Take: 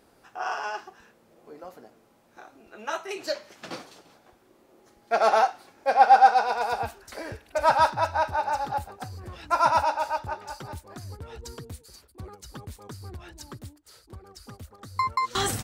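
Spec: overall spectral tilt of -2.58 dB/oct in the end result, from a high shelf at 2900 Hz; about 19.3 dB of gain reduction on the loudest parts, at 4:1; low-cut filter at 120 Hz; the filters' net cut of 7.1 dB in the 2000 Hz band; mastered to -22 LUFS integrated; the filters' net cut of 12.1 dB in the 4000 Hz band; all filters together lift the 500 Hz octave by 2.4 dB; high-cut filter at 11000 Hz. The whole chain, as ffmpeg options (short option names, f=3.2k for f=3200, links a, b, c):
-af "highpass=120,lowpass=11k,equalizer=f=500:t=o:g=4.5,equalizer=f=2k:t=o:g=-7.5,highshelf=f=2.9k:g=-7.5,equalizer=f=4k:t=o:g=-7,acompressor=threshold=-35dB:ratio=4,volume=18dB"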